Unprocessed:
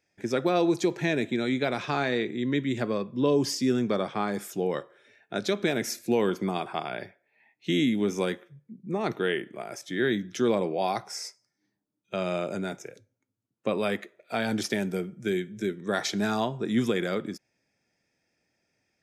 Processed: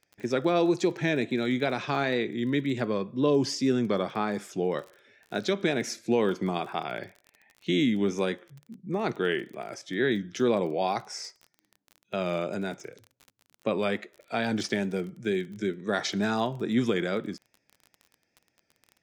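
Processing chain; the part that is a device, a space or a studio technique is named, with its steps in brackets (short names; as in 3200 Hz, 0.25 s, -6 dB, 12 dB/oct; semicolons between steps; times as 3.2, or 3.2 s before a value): lo-fi chain (LPF 7000 Hz 12 dB/oct; wow and flutter; crackle 26/s -38 dBFS)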